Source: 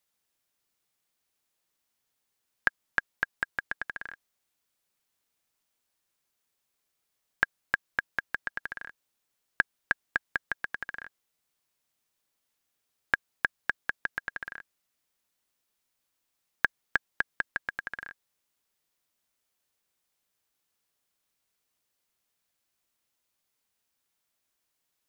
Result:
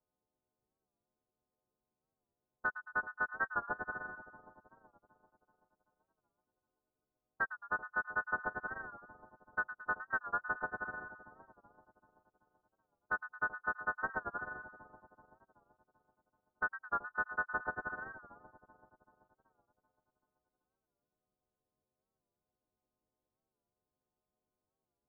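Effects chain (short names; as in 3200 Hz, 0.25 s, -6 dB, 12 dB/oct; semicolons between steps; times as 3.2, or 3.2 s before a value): frequency quantiser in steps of 3 st; steep low-pass 1500 Hz 96 dB/oct; low-pass opened by the level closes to 760 Hz, open at -34 dBFS; harmonic-percussive split percussive +9 dB; compressor, threshold -23 dBFS, peak gain reduction 9 dB; limiter -24 dBFS, peak gain reduction 11.5 dB; on a send: split-band echo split 930 Hz, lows 0.383 s, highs 0.11 s, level -11 dB; on the sum: record warp 45 rpm, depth 100 cents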